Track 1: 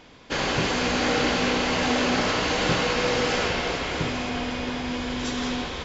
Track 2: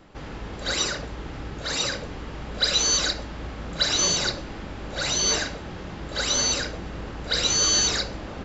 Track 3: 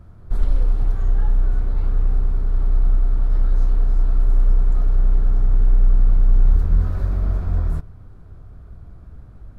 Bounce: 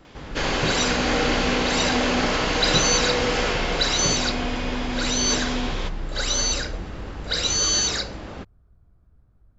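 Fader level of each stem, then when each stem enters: +1.0, -0.5, -17.5 dB; 0.05, 0.00, 0.00 s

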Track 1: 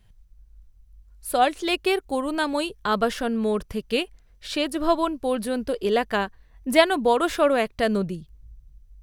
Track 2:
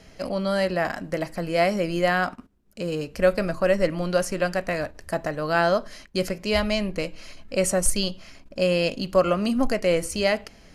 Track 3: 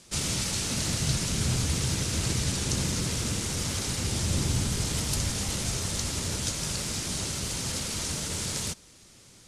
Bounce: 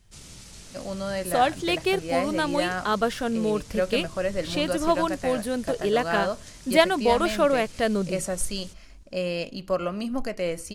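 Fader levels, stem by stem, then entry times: -1.5, -6.5, -16.5 dB; 0.00, 0.55, 0.00 s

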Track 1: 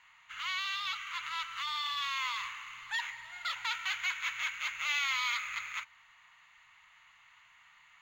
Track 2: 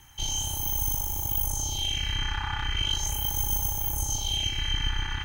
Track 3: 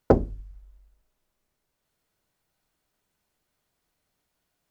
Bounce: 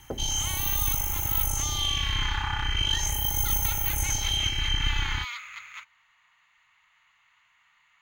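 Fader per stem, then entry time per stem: -3.5, +1.5, -17.5 dB; 0.00, 0.00, 0.00 s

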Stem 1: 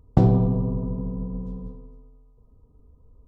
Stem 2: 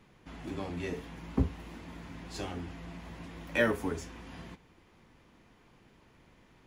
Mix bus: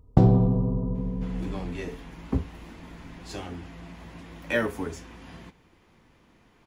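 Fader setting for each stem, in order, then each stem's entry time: -0.5, +1.5 dB; 0.00, 0.95 s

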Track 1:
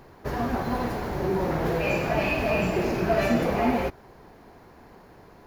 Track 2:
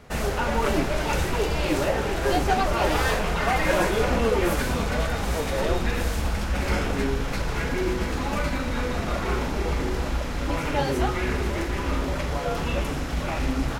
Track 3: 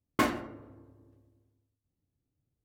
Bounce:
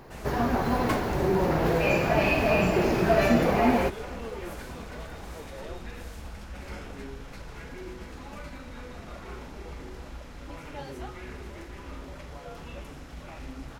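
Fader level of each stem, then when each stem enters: +1.5, -15.0, -3.5 dB; 0.00, 0.00, 0.70 s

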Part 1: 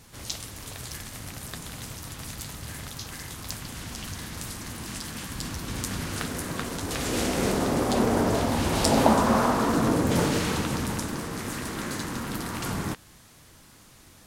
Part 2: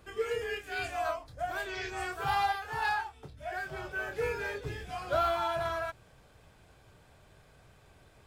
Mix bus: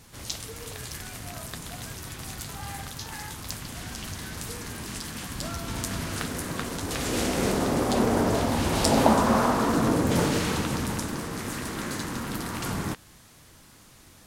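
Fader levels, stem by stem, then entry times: 0.0, -13.0 dB; 0.00, 0.30 s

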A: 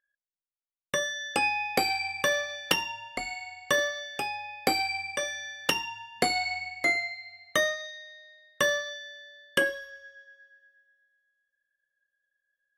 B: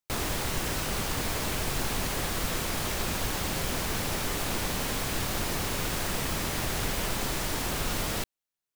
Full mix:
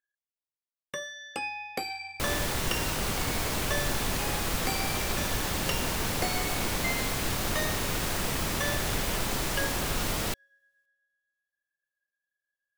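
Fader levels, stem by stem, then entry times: -8.0, +0.5 dB; 0.00, 2.10 s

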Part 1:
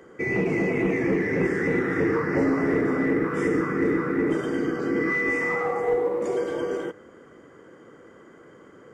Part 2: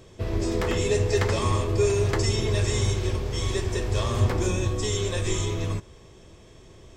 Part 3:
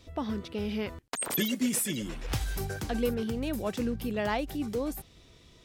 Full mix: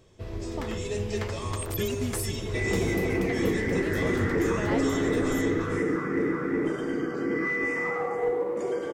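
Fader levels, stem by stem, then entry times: -3.5, -8.5, -5.0 dB; 2.35, 0.00, 0.40 s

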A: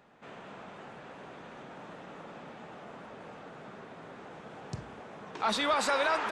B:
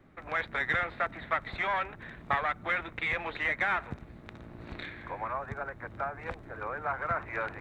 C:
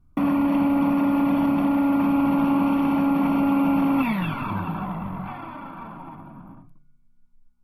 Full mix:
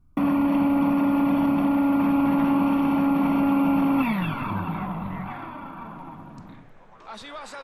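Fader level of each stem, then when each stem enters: -10.5, -17.5, -0.5 dB; 1.65, 1.70, 0.00 s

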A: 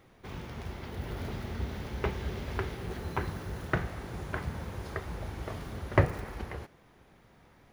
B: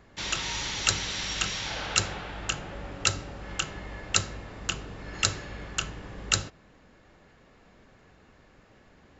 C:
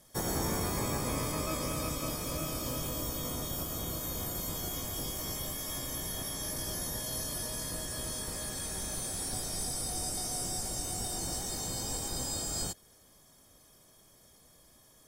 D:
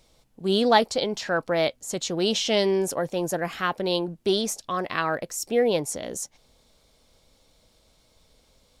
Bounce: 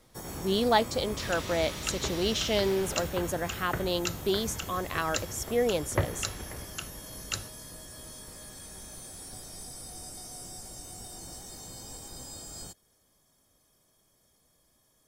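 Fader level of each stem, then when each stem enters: -4.5, -9.0, -8.0, -5.0 dB; 0.00, 1.00, 0.00, 0.00 s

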